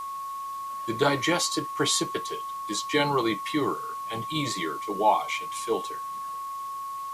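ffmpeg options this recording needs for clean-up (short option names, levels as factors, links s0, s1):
-af "adeclick=t=4,bandreject=f=1100:w=30,afwtdn=0.0028"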